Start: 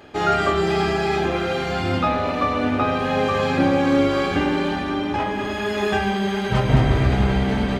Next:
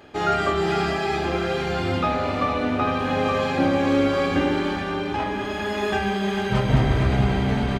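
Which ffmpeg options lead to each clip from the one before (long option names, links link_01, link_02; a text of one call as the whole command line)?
ffmpeg -i in.wav -af "aecho=1:1:452:0.398,volume=-2.5dB" out.wav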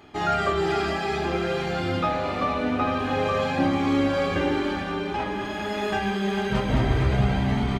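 ffmpeg -i in.wav -af "flanger=delay=0.9:depth=5.4:regen=-52:speed=0.26:shape=sinusoidal,volume=2dB" out.wav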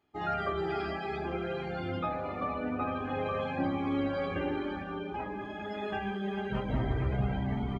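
ffmpeg -i in.wav -af "afftdn=noise_reduction=17:noise_floor=-32,volume=-8.5dB" out.wav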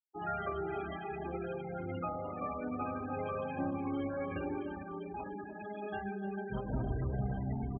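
ffmpeg -i in.wav -af "afftfilt=real='re*gte(hypot(re,im),0.0282)':imag='im*gte(hypot(re,im),0.0282)':win_size=1024:overlap=0.75,aecho=1:1:298:0.211,volume=-4.5dB" out.wav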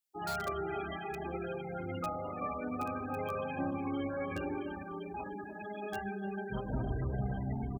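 ffmpeg -i in.wav -filter_complex "[0:a]highshelf=frequency=2700:gain=9.5,acrossover=split=1400[link_01][link_02];[link_02]aeval=exprs='(mod(79.4*val(0)+1,2)-1)/79.4':channel_layout=same[link_03];[link_01][link_03]amix=inputs=2:normalize=0" out.wav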